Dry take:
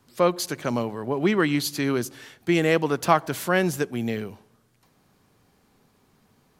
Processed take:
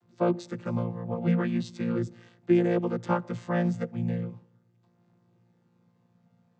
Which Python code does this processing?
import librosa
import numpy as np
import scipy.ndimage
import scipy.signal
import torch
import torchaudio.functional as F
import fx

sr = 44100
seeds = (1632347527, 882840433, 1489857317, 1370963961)

y = fx.chord_vocoder(x, sr, chord='bare fifth', root=46)
y = y * 10.0 ** (-3.0 / 20.0)